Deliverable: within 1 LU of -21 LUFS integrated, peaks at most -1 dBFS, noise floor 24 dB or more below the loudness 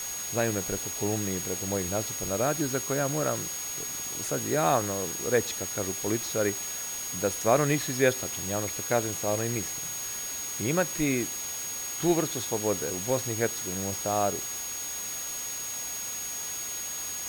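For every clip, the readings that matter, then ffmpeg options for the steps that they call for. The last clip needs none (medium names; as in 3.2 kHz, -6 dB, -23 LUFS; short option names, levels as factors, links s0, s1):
steady tone 6.6 kHz; tone level -34 dBFS; noise floor -35 dBFS; noise floor target -53 dBFS; loudness -28.5 LUFS; peak level -9.0 dBFS; loudness target -21.0 LUFS
-> -af "bandreject=f=6600:w=30"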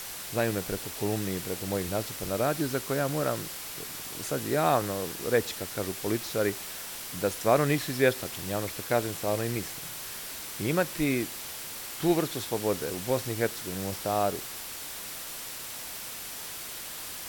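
steady tone not found; noise floor -40 dBFS; noise floor target -55 dBFS
-> -af "afftdn=nr=15:nf=-40"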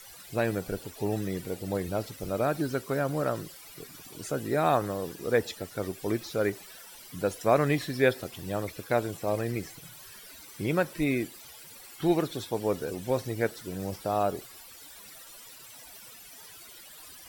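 noise floor -49 dBFS; noise floor target -54 dBFS
-> -af "afftdn=nr=6:nf=-49"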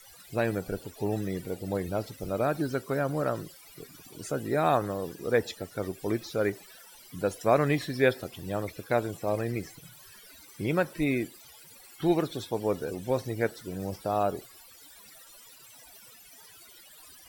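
noise floor -53 dBFS; noise floor target -54 dBFS
-> -af "afftdn=nr=6:nf=-53"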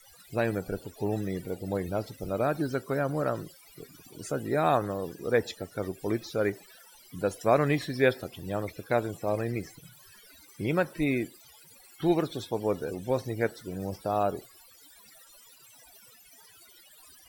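noise floor -56 dBFS; loudness -30.5 LUFS; peak level -9.5 dBFS; loudness target -21.0 LUFS
-> -af "volume=2.99,alimiter=limit=0.891:level=0:latency=1"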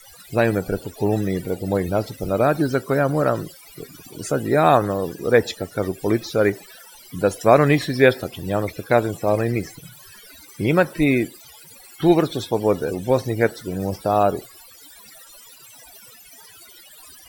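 loudness -21.0 LUFS; peak level -1.0 dBFS; noise floor -46 dBFS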